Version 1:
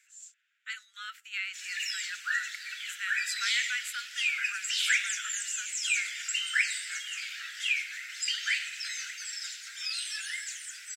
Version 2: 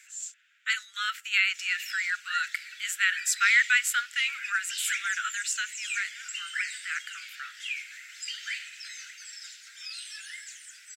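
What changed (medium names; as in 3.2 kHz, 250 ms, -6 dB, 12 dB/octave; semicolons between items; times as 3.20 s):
speech +11.0 dB; background -5.5 dB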